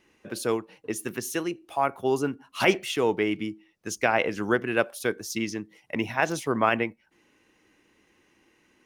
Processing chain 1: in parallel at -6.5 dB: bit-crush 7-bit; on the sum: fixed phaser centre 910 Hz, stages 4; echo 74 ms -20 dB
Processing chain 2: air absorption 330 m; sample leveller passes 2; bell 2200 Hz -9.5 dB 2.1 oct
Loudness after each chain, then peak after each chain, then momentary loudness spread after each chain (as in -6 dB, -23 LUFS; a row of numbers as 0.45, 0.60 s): -29.5, -25.0 LUFS; -6.5, -9.5 dBFS; 12, 8 LU